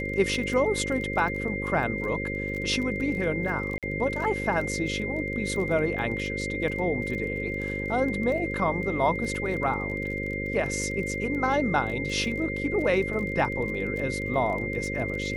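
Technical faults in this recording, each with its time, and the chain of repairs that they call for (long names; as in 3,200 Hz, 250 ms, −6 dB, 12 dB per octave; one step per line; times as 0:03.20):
mains buzz 50 Hz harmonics 11 −33 dBFS
surface crackle 21 per second −33 dBFS
whistle 2,100 Hz −32 dBFS
0:03.78–0:03.83: drop-out 47 ms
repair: click removal
hum removal 50 Hz, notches 11
notch filter 2,100 Hz, Q 30
repair the gap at 0:03.78, 47 ms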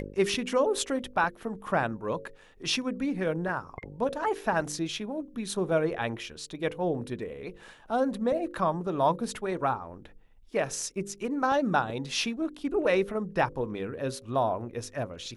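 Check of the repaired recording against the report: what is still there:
none of them is left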